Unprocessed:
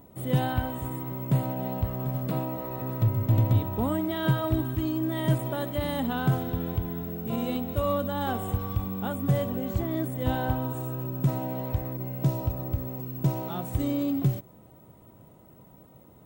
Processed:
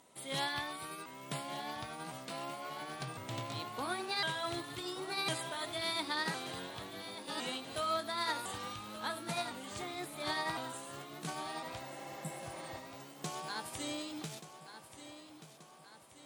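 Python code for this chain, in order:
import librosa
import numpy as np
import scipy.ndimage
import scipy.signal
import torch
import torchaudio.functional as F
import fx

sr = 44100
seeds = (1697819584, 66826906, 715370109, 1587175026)

p1 = fx.pitch_ramps(x, sr, semitones=4.0, every_ms=1057)
p2 = fx.weighting(p1, sr, curve='ITU-R 468')
p3 = fx.spec_repair(p2, sr, seeds[0], start_s=11.86, length_s=0.9, low_hz=290.0, high_hz=7300.0, source='before')
p4 = p3 + fx.echo_feedback(p3, sr, ms=1181, feedback_pct=52, wet_db=-12, dry=0)
y = p4 * librosa.db_to_amplitude(-4.5)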